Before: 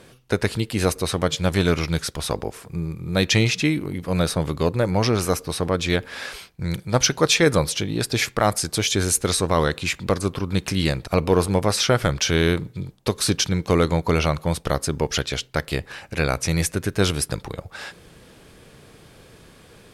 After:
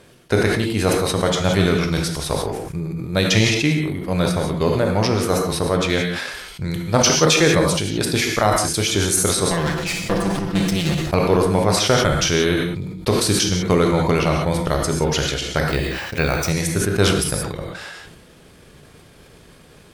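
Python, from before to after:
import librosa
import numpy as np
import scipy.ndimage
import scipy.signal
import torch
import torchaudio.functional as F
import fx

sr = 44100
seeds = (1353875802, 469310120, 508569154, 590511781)

y = fx.lower_of_two(x, sr, delay_ms=5.9, at=(9.47, 11.05))
y = fx.transient(y, sr, attack_db=3, sustain_db=-8)
y = fx.rev_gated(y, sr, seeds[0], gate_ms=200, shape='flat', drr_db=3.5)
y = fx.resample_bad(y, sr, factor=2, down='filtered', up='hold', at=(15.69, 16.5))
y = fx.sustainer(y, sr, db_per_s=36.0)
y = F.gain(torch.from_numpy(y), -1.0).numpy()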